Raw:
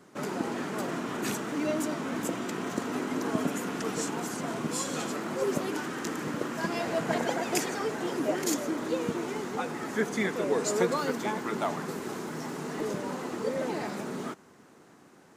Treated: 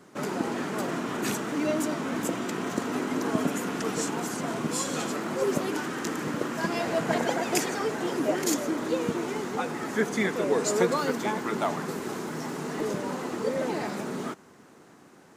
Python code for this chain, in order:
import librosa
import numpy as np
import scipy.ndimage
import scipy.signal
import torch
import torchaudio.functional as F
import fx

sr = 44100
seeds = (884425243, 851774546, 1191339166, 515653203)

y = F.gain(torch.from_numpy(x), 2.5).numpy()